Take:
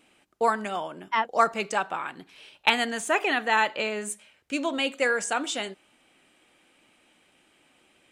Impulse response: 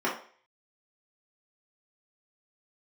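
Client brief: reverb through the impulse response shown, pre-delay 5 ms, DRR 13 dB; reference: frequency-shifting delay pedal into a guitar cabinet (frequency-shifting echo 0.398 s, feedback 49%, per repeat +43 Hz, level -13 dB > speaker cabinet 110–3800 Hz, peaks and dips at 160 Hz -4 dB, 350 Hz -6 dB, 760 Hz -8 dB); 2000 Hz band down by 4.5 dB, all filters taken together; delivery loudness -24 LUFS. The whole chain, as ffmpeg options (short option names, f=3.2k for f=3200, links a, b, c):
-filter_complex "[0:a]equalizer=f=2k:t=o:g=-5.5,asplit=2[a][b];[1:a]atrim=start_sample=2205,adelay=5[c];[b][c]afir=irnorm=-1:irlink=0,volume=-25dB[d];[a][d]amix=inputs=2:normalize=0,asplit=6[e][f][g][h][i][j];[f]adelay=398,afreqshift=43,volume=-13dB[k];[g]adelay=796,afreqshift=86,volume=-19.2dB[l];[h]adelay=1194,afreqshift=129,volume=-25.4dB[m];[i]adelay=1592,afreqshift=172,volume=-31.6dB[n];[j]adelay=1990,afreqshift=215,volume=-37.8dB[o];[e][k][l][m][n][o]amix=inputs=6:normalize=0,highpass=110,equalizer=f=160:t=q:w=4:g=-4,equalizer=f=350:t=q:w=4:g=-6,equalizer=f=760:t=q:w=4:g=-8,lowpass=f=3.8k:w=0.5412,lowpass=f=3.8k:w=1.3066,volume=6dB"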